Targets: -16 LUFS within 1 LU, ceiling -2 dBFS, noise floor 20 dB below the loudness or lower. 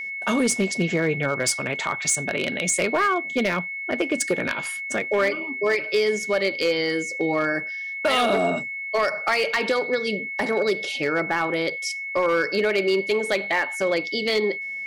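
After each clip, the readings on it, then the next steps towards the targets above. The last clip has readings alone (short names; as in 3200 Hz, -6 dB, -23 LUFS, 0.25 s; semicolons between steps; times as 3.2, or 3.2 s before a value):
clipped 0.7%; flat tops at -14.5 dBFS; steady tone 2200 Hz; tone level -29 dBFS; loudness -23.0 LUFS; peak -14.5 dBFS; loudness target -16.0 LUFS
-> clip repair -14.5 dBFS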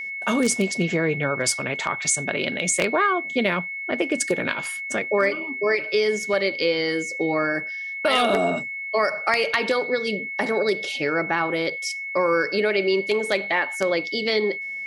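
clipped 0.0%; steady tone 2200 Hz; tone level -29 dBFS
-> notch 2200 Hz, Q 30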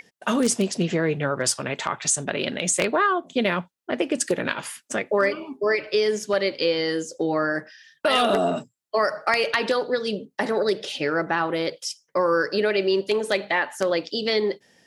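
steady tone none; loudness -24.0 LUFS; peak -5.0 dBFS; loudness target -16.0 LUFS
-> gain +8 dB; limiter -2 dBFS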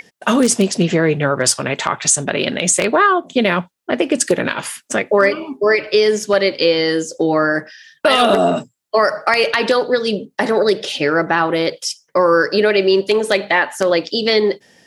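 loudness -16.0 LUFS; peak -2.0 dBFS; noise floor -64 dBFS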